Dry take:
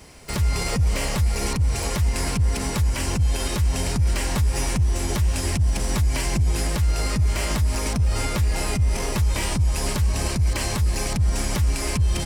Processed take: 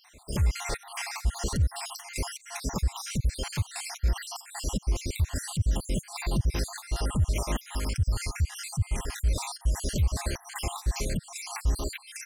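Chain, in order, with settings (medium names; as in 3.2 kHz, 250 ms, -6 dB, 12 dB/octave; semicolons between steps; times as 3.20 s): random holes in the spectrogram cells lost 61%; 7.65–9.17 s: dynamic bell 530 Hz, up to -7 dB, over -45 dBFS, Q 0.83; trim -3 dB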